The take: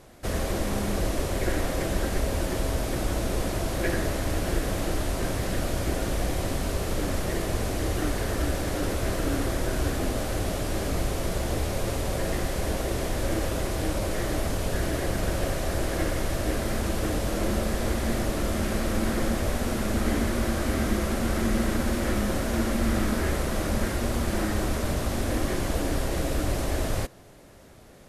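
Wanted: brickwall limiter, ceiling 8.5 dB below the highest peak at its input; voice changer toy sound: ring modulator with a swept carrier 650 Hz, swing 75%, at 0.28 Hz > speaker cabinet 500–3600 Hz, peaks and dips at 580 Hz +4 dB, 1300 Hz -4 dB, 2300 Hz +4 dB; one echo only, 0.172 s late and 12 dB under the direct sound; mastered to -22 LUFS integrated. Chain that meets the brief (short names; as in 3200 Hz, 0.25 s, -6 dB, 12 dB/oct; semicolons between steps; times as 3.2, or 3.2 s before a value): limiter -20.5 dBFS; echo 0.172 s -12 dB; ring modulator with a swept carrier 650 Hz, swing 75%, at 0.28 Hz; speaker cabinet 500–3600 Hz, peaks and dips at 580 Hz +4 dB, 1300 Hz -4 dB, 2300 Hz +4 dB; gain +11.5 dB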